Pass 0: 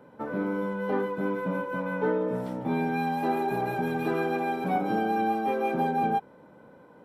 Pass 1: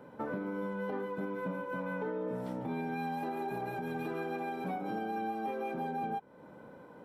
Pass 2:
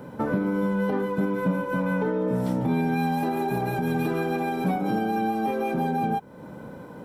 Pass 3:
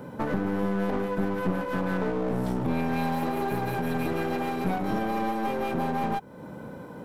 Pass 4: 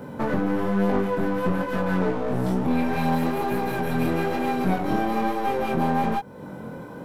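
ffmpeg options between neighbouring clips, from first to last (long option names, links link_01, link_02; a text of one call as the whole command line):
ffmpeg -i in.wav -filter_complex "[0:a]asplit=2[link_01][link_02];[link_02]acompressor=threshold=-36dB:ratio=6,volume=-1dB[link_03];[link_01][link_03]amix=inputs=2:normalize=0,alimiter=limit=-23dB:level=0:latency=1:release=341,volume=-5dB" out.wav
ffmpeg -i in.wav -af "bass=frequency=250:gain=8,treble=frequency=4000:gain=7,volume=9dB" out.wav
ffmpeg -i in.wav -af "aeval=exprs='clip(val(0),-1,0.0266)':channel_layout=same" out.wav
ffmpeg -i in.wav -af "flanger=delay=20:depth=4.2:speed=1.1,volume=6.5dB" out.wav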